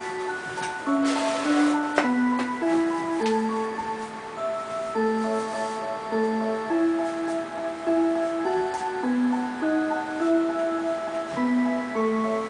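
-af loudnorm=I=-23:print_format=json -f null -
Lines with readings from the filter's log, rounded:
"input_i" : "-25.6",
"input_tp" : "-4.7",
"input_lra" : "2.4",
"input_thresh" : "-35.6",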